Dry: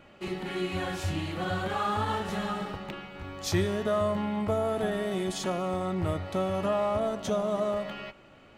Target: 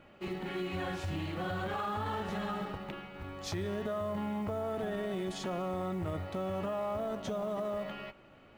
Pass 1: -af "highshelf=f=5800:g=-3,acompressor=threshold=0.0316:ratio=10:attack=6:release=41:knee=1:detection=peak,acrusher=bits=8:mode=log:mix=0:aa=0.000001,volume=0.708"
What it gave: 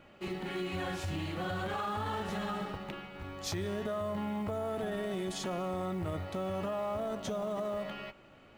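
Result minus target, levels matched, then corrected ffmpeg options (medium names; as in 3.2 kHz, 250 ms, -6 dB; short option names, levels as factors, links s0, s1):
8 kHz band +4.5 dB
-af "highshelf=f=5800:g=-11.5,acompressor=threshold=0.0316:ratio=10:attack=6:release=41:knee=1:detection=peak,acrusher=bits=8:mode=log:mix=0:aa=0.000001,volume=0.708"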